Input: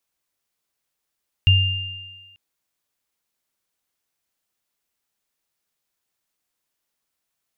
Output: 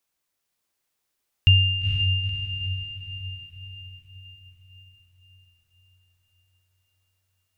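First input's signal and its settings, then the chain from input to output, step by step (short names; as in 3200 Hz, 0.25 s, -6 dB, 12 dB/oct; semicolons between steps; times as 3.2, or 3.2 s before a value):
sine partials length 0.89 s, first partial 95.3 Hz, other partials 2800 Hz, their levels -4.5 dB, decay 1.02 s, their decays 1.56 s, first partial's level -10 dB
diffused feedback echo 0.473 s, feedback 54%, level -4.5 dB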